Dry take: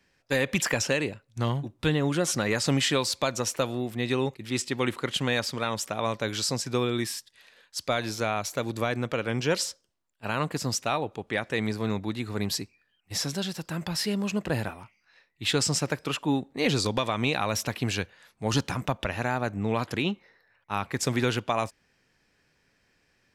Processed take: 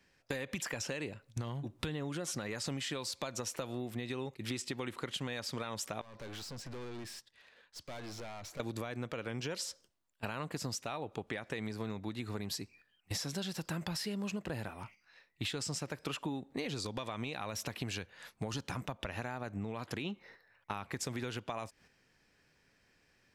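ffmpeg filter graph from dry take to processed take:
-filter_complex "[0:a]asettb=1/sr,asplit=3[s0][s1][s2];[s0]atrim=end=6.014[s3];[s1]atrim=start=6.01:end=8.6,asetpts=PTS-STARTPTS,afade=t=in:d=0.004:c=qsin,afade=t=out:st=2.586:d=0.004:c=qsin,acompressor=threshold=0.00891:ratio=3:attack=3.2:release=140:knee=1:detection=peak,lowpass=f=2700:p=1,aeval=exprs='(tanh(224*val(0)+0.35)-tanh(0.35))/224':c=same[s4];[s2]atrim=start=8.596[s5];[s3][s4]acrossfade=d=0.004:c1=hsin:c2=qsin[s6];[s6][s5]acrossfade=d=0.004:c1=qsin:c2=hsin,agate=range=0.447:threshold=0.00178:ratio=16:detection=peak,alimiter=limit=0.0891:level=0:latency=1:release=272,acompressor=threshold=0.01:ratio=12,volume=1.78"

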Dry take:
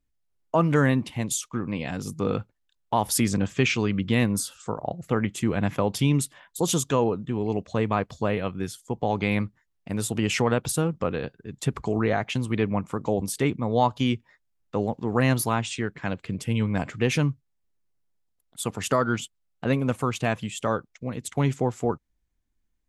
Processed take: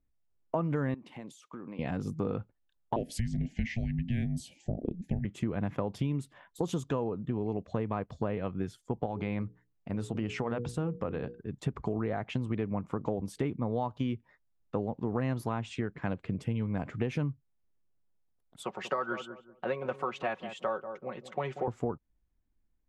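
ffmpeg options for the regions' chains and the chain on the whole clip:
-filter_complex "[0:a]asettb=1/sr,asplit=3[s0][s1][s2];[s0]atrim=end=0.944[s3];[s1]atrim=start=0.94:end=1.79,asetpts=PTS-STARTPTS,afade=t=in:d=0.004:c=qsin,afade=t=out:st=0.846:d=0.004:c=qsin,highpass=250,acompressor=threshold=0.0112:ratio=5:attack=3.2:release=140:knee=1:detection=peak[s4];[s2]atrim=start=1.786[s5];[s3][s4]acrossfade=d=0.004:c1=hsin:c2=qsin[s6];[s6][s5]acrossfade=d=0.004:c1=qsin:c2=hsin,asettb=1/sr,asplit=3[s7][s8][s9];[s7]atrim=end=2.964[s10];[s8]atrim=start=2.96:end=5.25,asetpts=PTS-STARTPTS,afade=t=in:d=0.004:c=qsin,afade=t=out:st=2.286:d=0.004:c=qsin,asuperstop=centerf=1500:order=8:qfactor=1.5,afreqshift=-350[s11];[s9]atrim=start=5.246[s12];[s10][s11]acrossfade=d=0.004:c1=hsin:c2=qsin[s13];[s13][s12]acrossfade=d=0.004:c1=qsin:c2=hsin,asettb=1/sr,asplit=3[s14][s15][s16];[s14]atrim=end=9.064[s17];[s15]atrim=start=9.06:end=11.4,asetpts=PTS-STARTPTS,afade=t=in:d=0.004:c=qsin,afade=t=out:st=2.336:d=0.004:c=qsin,lowpass=9500,bandreject=f=60:t=h:w=6,bandreject=f=120:t=h:w=6,bandreject=f=180:t=h:w=6,bandreject=f=240:t=h:w=6,bandreject=f=300:t=h:w=6,bandreject=f=360:t=h:w=6,bandreject=f=420:t=h:w=6,bandreject=f=480:t=h:w=6,acompressor=threshold=0.0224:ratio=1.5:attack=3.2:release=140:knee=1:detection=peak[s18];[s16]atrim=start=11.396[s19];[s17][s18]acrossfade=d=0.004:c1=hsin:c2=qsin[s20];[s20][s19]acrossfade=d=0.004:c1=qsin:c2=hsin,asettb=1/sr,asplit=3[s21][s22][s23];[s21]atrim=end=18.634[s24];[s22]atrim=start=18.63:end=21.68,asetpts=PTS-STARTPTS,afade=t=in:d=0.004:c=qsin,afade=t=out:st=3.046:d=0.004:c=qsin,acrossover=split=430 5900:gain=0.126 1 0.178[s25][s26][s27];[s25][s26][s27]amix=inputs=3:normalize=0,aecho=1:1:5.4:0.69,atrim=end_sample=134505,asplit=2[s28][s29];[s29]adelay=188,lowpass=f=810:p=1,volume=0.282,asplit=2[s30][s31];[s31]adelay=188,lowpass=f=810:p=1,volume=0.31,asplit=2[s32][s33];[s33]adelay=188,lowpass=f=810:p=1,volume=0.31[s34];[s28][s30][s32][s34]amix=inputs=4:normalize=0,atrim=end_sample=134505[s35];[s23]atrim=start=21.676[s36];[s24][s35]acrossfade=d=0.004:c1=hsin:c2=qsin[s37];[s37][s36]acrossfade=d=0.004:c1=qsin:c2=hsin,lowpass=f=1100:p=1,acompressor=threshold=0.0398:ratio=6"

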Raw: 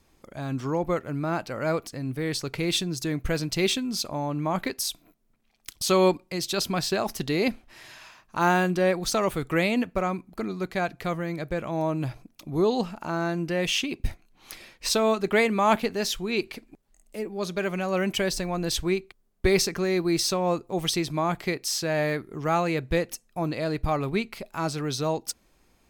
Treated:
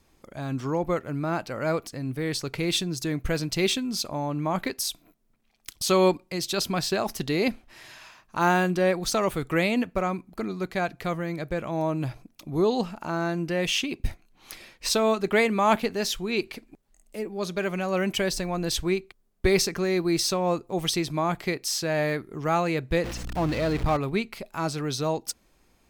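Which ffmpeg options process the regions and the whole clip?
-filter_complex "[0:a]asettb=1/sr,asplit=3[s0][s1][s2];[s0]atrim=end=23.044[s3];[s1]atrim=start=23.04:end=23.97,asetpts=PTS-STARTPTS,afade=t=in:d=0.004:c=qsin,afade=t=out:st=0.926:d=0.004:c=qsin,aeval=exprs='val(0)+0.5*0.0335*sgn(val(0))':c=same,acrossover=split=5800[s4][s5];[s5]acompressor=threshold=0.00282:ratio=4:attack=1:release=60[s6];[s4][s6]amix=inputs=2:normalize=0,aeval=exprs='val(0)+0.0158*(sin(2*PI*60*n/s)+sin(2*PI*2*60*n/s)/2+sin(2*PI*3*60*n/s)/3+sin(2*PI*4*60*n/s)/4+sin(2*PI*5*60*n/s)/5)':c=same[s7];[s2]atrim=start=23.966[s8];[s3][s7]acrossfade=d=0.004:c1=hsin:c2=qsin[s9];[s9][s8]acrossfade=d=0.004:c1=qsin:c2=hsin"

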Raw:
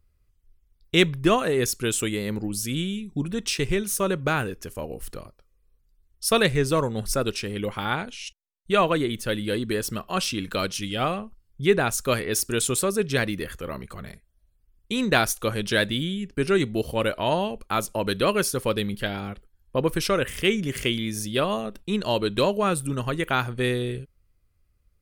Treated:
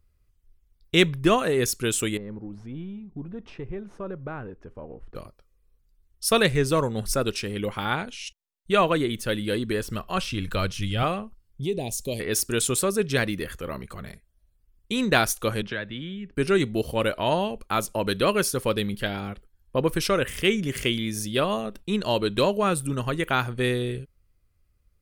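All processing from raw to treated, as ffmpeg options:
-filter_complex "[0:a]asettb=1/sr,asplit=3[s0][s1][s2];[s0]atrim=end=2.174[s3];[s1]atrim=start=2.17:end=5.15,asetpts=PTS-STARTPTS,afade=t=in:d=0.004:c=qsin,afade=t=out:st=2.976:d=0.004:c=qsin,aeval=exprs='if(lt(val(0),0),0.708*val(0),val(0))':c=same,lowpass=1200,acompressor=threshold=0.00631:ratio=1.5:attack=3.2:release=140:knee=1:detection=peak[s4];[s2]atrim=start=5.146[s5];[s3][s4]acrossfade=d=0.004:c1=hsin:c2=qsin[s6];[s6][s5]acrossfade=d=0.004:c1=qsin:c2=hsin,asettb=1/sr,asplit=3[s7][s8][s9];[s7]atrim=end=9.624[s10];[s8]atrim=start=9.62:end=11.03,asetpts=PTS-STARTPTS,afade=t=in:d=0.004:c=qsin,afade=t=out:st=1.406:d=0.004:c=qsin,acrossover=split=3200[s11][s12];[s12]acompressor=threshold=0.0158:ratio=4:attack=1:release=60[s13];[s11][s13]amix=inputs=2:normalize=0,asubboost=boost=11.5:cutoff=120[s14];[s9]atrim=start=11.026[s15];[s10][s14]acrossfade=d=0.004:c1=hsin:c2=qsin[s16];[s16][s15]acrossfade=d=0.004:c1=qsin:c2=hsin,asettb=1/sr,asplit=3[s17][s18][s19];[s17]atrim=end=11.634[s20];[s18]atrim=start=11.63:end=12.2,asetpts=PTS-STARTPTS,afade=t=in:d=0.004:c=qsin,afade=t=out:st=0.566:d=0.004:c=qsin,asuperstop=centerf=1400:order=4:qfactor=0.63,acompressor=threshold=0.0398:ratio=2:attack=3.2:release=140:knee=1:detection=peak[s21];[s19]atrim=start=12.196[s22];[s20][s21]acrossfade=d=0.004:c1=hsin:c2=qsin[s23];[s23][s22]acrossfade=d=0.004:c1=qsin:c2=hsin,asettb=1/sr,asplit=3[s24][s25][s26];[s24]atrim=end=15.624[s27];[s25]atrim=start=15.62:end=16.36,asetpts=PTS-STARTPTS,afade=t=in:d=0.004:c=qsin,afade=t=out:st=0.736:d=0.004:c=qsin,lowpass=2100,acrossover=split=180|930[s28][s29][s30];[s28]acompressor=threshold=0.00794:ratio=4[s31];[s29]acompressor=threshold=0.0141:ratio=4[s32];[s30]acompressor=threshold=0.0282:ratio=4[s33];[s31][s32][s33]amix=inputs=3:normalize=0[s34];[s26]atrim=start=16.356[s35];[s27][s34]acrossfade=d=0.004:c1=hsin:c2=qsin[s36];[s36][s35]acrossfade=d=0.004:c1=qsin:c2=hsin"

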